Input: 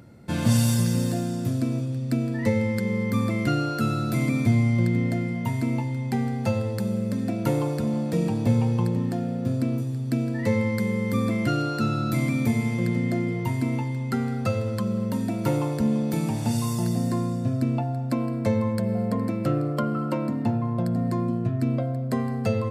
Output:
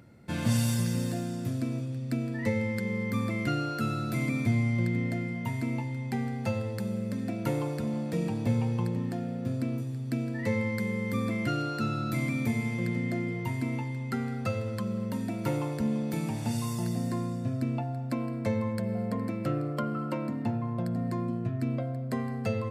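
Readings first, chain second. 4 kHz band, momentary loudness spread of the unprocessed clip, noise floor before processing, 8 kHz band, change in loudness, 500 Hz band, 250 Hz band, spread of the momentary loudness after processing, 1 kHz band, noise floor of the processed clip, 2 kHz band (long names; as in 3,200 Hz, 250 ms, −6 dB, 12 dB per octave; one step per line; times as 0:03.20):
−5.0 dB, 5 LU, −29 dBFS, −6.0 dB, −6.0 dB, −6.0 dB, −6.0 dB, 5 LU, −5.0 dB, −35 dBFS, −2.5 dB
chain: parametric band 2,100 Hz +4 dB 1.1 octaves
level −6 dB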